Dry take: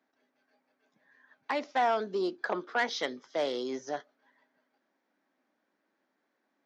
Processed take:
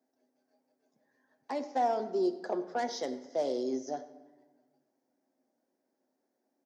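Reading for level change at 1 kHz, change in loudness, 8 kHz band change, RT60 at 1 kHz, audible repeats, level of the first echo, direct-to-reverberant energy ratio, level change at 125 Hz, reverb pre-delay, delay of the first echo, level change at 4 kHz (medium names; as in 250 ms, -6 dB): -2.0 dB, -1.5 dB, no reading, 1.2 s, 1, -20.0 dB, 7.5 dB, no reading, 8 ms, 95 ms, -7.5 dB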